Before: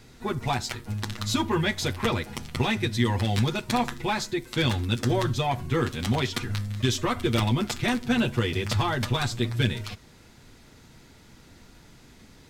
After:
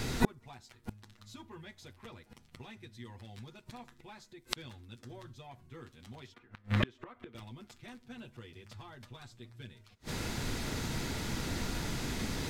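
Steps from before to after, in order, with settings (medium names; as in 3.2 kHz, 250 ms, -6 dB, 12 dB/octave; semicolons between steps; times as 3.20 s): 6.34–7.35 s: three-band isolator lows -13 dB, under 240 Hz, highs -21 dB, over 2.7 kHz; inverted gate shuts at -28 dBFS, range -40 dB; trim +15.5 dB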